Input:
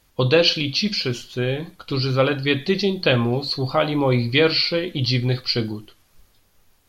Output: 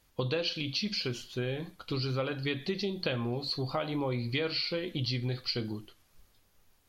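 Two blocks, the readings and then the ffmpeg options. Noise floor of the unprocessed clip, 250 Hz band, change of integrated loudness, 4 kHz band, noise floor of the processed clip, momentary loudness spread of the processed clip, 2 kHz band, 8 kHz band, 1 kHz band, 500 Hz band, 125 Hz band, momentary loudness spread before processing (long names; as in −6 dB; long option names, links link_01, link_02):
−60 dBFS, −12.0 dB, −12.5 dB, −12.0 dB, −67 dBFS, 5 LU, −13.5 dB, can't be measured, −13.0 dB, −13.5 dB, −12.0 dB, 9 LU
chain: -af "acompressor=threshold=-22dB:ratio=5,volume=-7dB"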